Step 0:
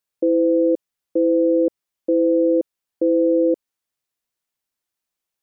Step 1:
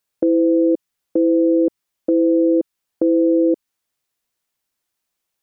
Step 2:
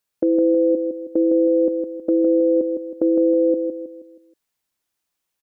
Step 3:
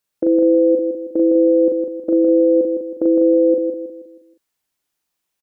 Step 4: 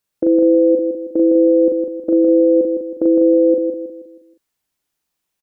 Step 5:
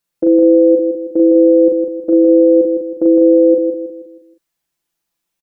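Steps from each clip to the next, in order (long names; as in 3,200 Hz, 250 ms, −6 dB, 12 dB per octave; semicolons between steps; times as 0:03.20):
dynamic equaliser 540 Hz, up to −7 dB, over −32 dBFS, Q 1.5; level +5.5 dB
repeating echo 159 ms, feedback 41%, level −6 dB; level −2 dB
double-tracking delay 39 ms −3 dB
low-shelf EQ 270 Hz +4 dB
comb filter 5.9 ms; level −1 dB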